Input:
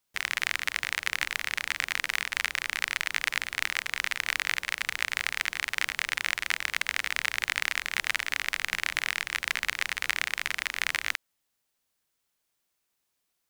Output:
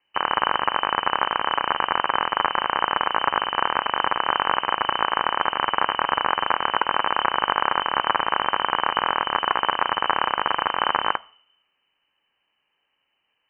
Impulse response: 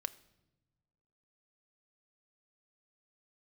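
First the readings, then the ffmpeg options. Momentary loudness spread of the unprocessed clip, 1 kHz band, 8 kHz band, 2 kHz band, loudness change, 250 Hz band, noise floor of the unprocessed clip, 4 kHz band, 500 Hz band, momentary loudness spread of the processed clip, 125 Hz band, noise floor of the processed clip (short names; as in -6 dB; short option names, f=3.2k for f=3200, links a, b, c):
2 LU, +20.0 dB, under -40 dB, +1.5 dB, +6.5 dB, +17.0 dB, -79 dBFS, +5.0 dB, +19.5 dB, 1 LU, n/a, -74 dBFS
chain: -filter_complex "[0:a]equalizer=f=110:t=o:w=2.6:g=13,bandreject=f=1.6k:w=18,asoftclip=type=tanh:threshold=-12.5dB,asplit=2[a][b];[1:a]atrim=start_sample=2205,asetrate=66150,aresample=44100[c];[b][c]afir=irnorm=-1:irlink=0,volume=6.5dB[d];[a][d]amix=inputs=2:normalize=0,lowpass=f=2.6k:t=q:w=0.5098,lowpass=f=2.6k:t=q:w=0.6013,lowpass=f=2.6k:t=q:w=0.9,lowpass=f=2.6k:t=q:w=2.563,afreqshift=-3100,volume=4.5dB"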